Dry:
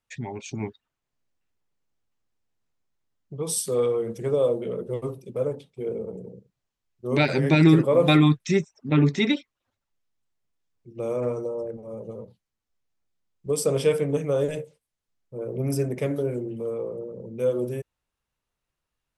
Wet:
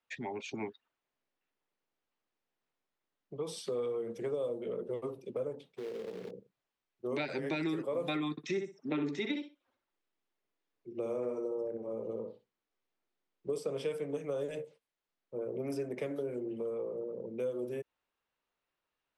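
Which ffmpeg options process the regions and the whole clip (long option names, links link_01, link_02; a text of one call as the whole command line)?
ffmpeg -i in.wav -filter_complex "[0:a]asettb=1/sr,asplit=3[link_01][link_02][link_03];[link_01]atrim=end=5.654[link_04];[link_02]atrim=start=5.65:end=6.31,asetpts=PTS-STARTPTS,afade=type=in:duration=0.004:curve=qsin,afade=type=out:start_time=0.656:duration=0.004:curve=qsin,bandreject=frequency=83.34:width_type=h:width=4,bandreject=frequency=166.68:width_type=h:width=4,acompressor=threshold=-35dB:ratio=8:attack=3.2:release=140:knee=1:detection=peak,acrusher=bits=3:mode=log:mix=0:aa=0.000001[link_05];[link_03]atrim=start=6.306[link_06];[link_04][link_05]acrossfade=duration=0.004:curve1=hsin:curve2=qsin[link_07];[link_07][link_06]acrossfade=duration=0.004:curve1=qsin:curve2=hsin,asettb=1/sr,asplit=3[link_08][link_09][link_10];[link_08]atrim=end=8.314[link_11];[link_09]atrim=start=8.31:end=13.58,asetpts=PTS-STARTPTS,afade=type=in:duration=0.004:curve=qsin,afade=type=out:start_time=5.266:duration=0.004:curve=qsin,equalizer=frequency=340:width=1.8:gain=4.5,asplit=2[link_12][link_13];[link_13]adelay=62,lowpass=frequency=4800:poles=1,volume=-6dB,asplit=2[link_14][link_15];[link_15]adelay=62,lowpass=frequency=4800:poles=1,volume=0.16,asplit=2[link_16][link_17];[link_17]adelay=62,lowpass=frequency=4800:poles=1,volume=0.16[link_18];[link_12][link_14][link_16][link_18]amix=inputs=4:normalize=0,atrim=end_sample=232407[link_19];[link_10]atrim=start=13.576[link_20];[link_11][link_19]acrossfade=duration=0.004:curve1=hsin:curve2=qsin[link_21];[link_21][link_20]acrossfade=duration=0.004:curve1=qsin:curve2=hsin,acrossover=split=240 4500:gain=0.158 1 0.2[link_22][link_23][link_24];[link_22][link_23][link_24]amix=inputs=3:normalize=0,acrossover=split=220|5700[link_25][link_26][link_27];[link_25]acompressor=threshold=-47dB:ratio=4[link_28];[link_26]acompressor=threshold=-36dB:ratio=4[link_29];[link_27]acompressor=threshold=-55dB:ratio=4[link_30];[link_28][link_29][link_30]amix=inputs=3:normalize=0" out.wav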